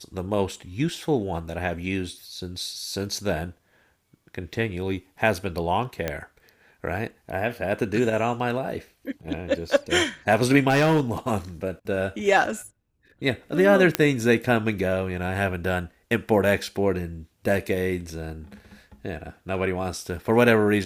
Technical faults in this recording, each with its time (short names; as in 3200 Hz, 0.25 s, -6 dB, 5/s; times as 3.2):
6.08 pop -12 dBFS
10.69–11.01 clipped -15.5 dBFS
13.95 pop -4 dBFS